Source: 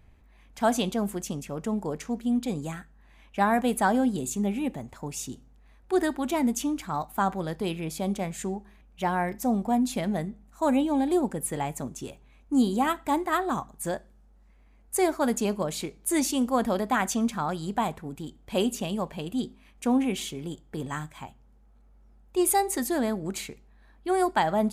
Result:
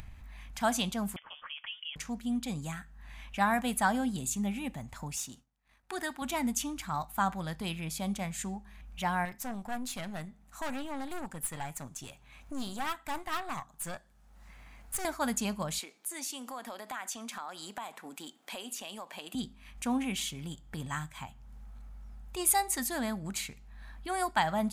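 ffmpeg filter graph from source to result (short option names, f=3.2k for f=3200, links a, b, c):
-filter_complex "[0:a]asettb=1/sr,asplit=3[a][b][c];[a]atrim=end=1.164[d];[b]atrim=start=1.16:end=1.96,asetpts=PTS-STARTPTS,afade=t=in:d=0.004:c=qsin,afade=t=out:st=0.796:d=0.004:c=qsin,highpass=f=750:w=0.5412,highpass=f=750:w=1.3066,lowpass=f=3.2k:t=q:w=0.5098,lowpass=f=3.2k:t=q:w=0.6013,lowpass=f=3.2k:t=q:w=0.9,lowpass=f=3.2k:t=q:w=2.563,afreqshift=-3800[e];[c]atrim=start=1.956[f];[d][e]acrossfade=d=0.004:c1=hsin:c2=qsin[g];[g][f]acrossfade=d=0.004:c1=qsin:c2=hsin,asettb=1/sr,asplit=3[h][i][j];[h]atrim=end=5.164[k];[i]atrim=start=5.16:end=6.22,asetpts=PTS-STARTPTS,afade=t=in:d=0.004:c=qsin,afade=t=out:st=1.056:d=0.004:c=qsin,aeval=exprs='if(lt(val(0),0),0.708*val(0),val(0))':c=same,highpass=f=230:p=1,agate=range=-33dB:threshold=-55dB:ratio=3:release=100:detection=peak[l];[j]atrim=start=6.216[m];[k][l]acrossfade=d=0.004:c1=hsin:c2=qsin[n];[n][m]acrossfade=d=0.004:c1=qsin:c2=hsin,asettb=1/sr,asplit=3[o][p][q];[o]atrim=end=9.254[r];[p]atrim=start=9.25:end=15.05,asetpts=PTS-STARTPTS,afade=t=in:d=0.004:c=qsin,afade=t=out:st=5.796:d=0.004:c=qsin,highpass=f=150:p=1,equalizer=f=220:w=3.6:g=-5.5,aeval=exprs='(tanh(20*val(0)+0.55)-tanh(0.55))/20':c=same[s];[q]atrim=start=15.046[t];[r][s]acrossfade=d=0.004:c1=hsin:c2=qsin[u];[u][t]acrossfade=d=0.004:c1=qsin:c2=hsin,asettb=1/sr,asplit=3[v][w][x];[v]atrim=end=15.794[y];[w]atrim=start=15.79:end=19.35,asetpts=PTS-STARTPTS,afade=t=in:d=0.004:c=qsin,afade=t=out:st=3.556:d=0.004:c=qsin,highpass=f=300:w=0.5412,highpass=f=300:w=1.3066,acompressor=threshold=-35dB:ratio=3:attack=3.2:release=140:knee=1:detection=peak[z];[x]atrim=start=19.346[aa];[y][z]acrossfade=d=0.004:c1=hsin:c2=qsin[ab];[ab][aa]acrossfade=d=0.004:c1=qsin:c2=hsin,equalizer=f=400:t=o:w=1.3:g=-15,acompressor=mode=upward:threshold=-37dB:ratio=2.5"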